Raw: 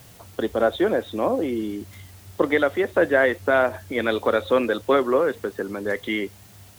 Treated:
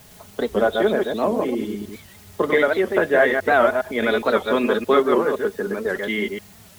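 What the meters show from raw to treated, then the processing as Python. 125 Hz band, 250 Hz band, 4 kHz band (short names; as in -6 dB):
+1.0 dB, +1.5 dB, +2.5 dB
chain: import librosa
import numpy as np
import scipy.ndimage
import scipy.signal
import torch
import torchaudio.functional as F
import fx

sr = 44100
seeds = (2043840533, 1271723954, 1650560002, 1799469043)

y = fx.reverse_delay(x, sr, ms=103, wet_db=-3.5)
y = y + 0.53 * np.pad(y, (int(4.8 * sr / 1000.0), 0))[:len(y)]
y = fx.record_warp(y, sr, rpm=78.0, depth_cents=160.0)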